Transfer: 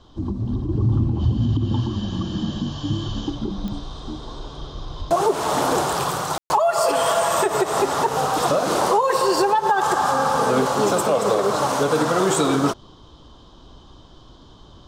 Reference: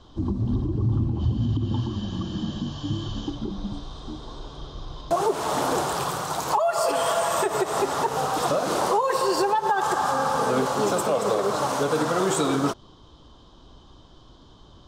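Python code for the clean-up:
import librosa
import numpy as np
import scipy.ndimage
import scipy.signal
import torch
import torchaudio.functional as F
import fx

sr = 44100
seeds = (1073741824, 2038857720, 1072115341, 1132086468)

y = fx.fix_declick_ar(x, sr, threshold=10.0)
y = fx.highpass(y, sr, hz=140.0, slope=24, at=(4.98, 5.1), fade=0.02)
y = fx.fix_ambience(y, sr, seeds[0], print_start_s=12.74, print_end_s=13.24, start_s=6.38, end_s=6.5)
y = fx.fix_level(y, sr, at_s=0.69, step_db=-4.0)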